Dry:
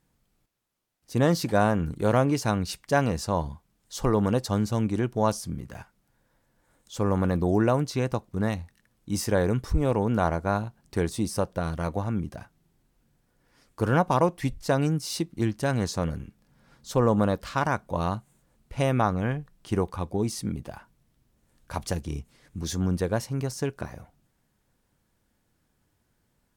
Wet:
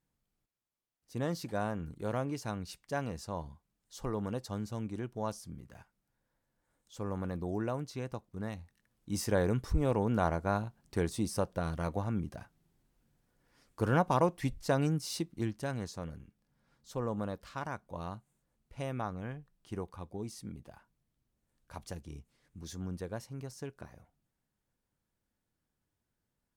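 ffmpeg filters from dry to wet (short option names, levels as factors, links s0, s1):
-af "volume=0.531,afade=t=in:st=8.5:d=0.82:silence=0.446684,afade=t=out:st=14.99:d=0.95:silence=0.398107"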